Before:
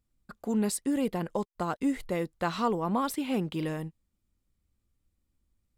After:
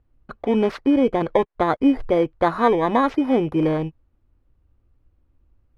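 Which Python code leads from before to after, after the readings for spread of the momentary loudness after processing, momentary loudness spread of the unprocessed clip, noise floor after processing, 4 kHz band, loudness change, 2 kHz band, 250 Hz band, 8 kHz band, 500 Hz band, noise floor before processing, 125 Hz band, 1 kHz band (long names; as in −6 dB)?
4 LU, 6 LU, −66 dBFS, +5.0 dB, +10.5 dB, +10.0 dB, +10.0 dB, below −10 dB, +13.0 dB, −80 dBFS, +6.5 dB, +11.0 dB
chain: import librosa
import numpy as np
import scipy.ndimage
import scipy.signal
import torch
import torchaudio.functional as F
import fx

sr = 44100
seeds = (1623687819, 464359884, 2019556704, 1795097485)

p1 = fx.bit_reversed(x, sr, seeds[0], block=16)
p2 = scipy.signal.sosfilt(scipy.signal.butter(2, 1500.0, 'lowpass', fs=sr, output='sos'), p1)
p3 = fx.peak_eq(p2, sr, hz=190.0, db=-15.0, octaves=0.44)
p4 = fx.rider(p3, sr, range_db=10, speed_s=0.5)
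p5 = p3 + F.gain(torch.from_numpy(p4), -0.5).numpy()
y = F.gain(torch.from_numpy(p5), 8.5).numpy()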